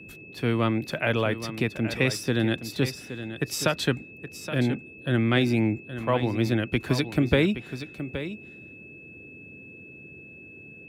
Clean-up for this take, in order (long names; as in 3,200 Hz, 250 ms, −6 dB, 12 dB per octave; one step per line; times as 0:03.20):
notch filter 2,600 Hz, Q 30
noise reduction from a noise print 25 dB
echo removal 821 ms −11.5 dB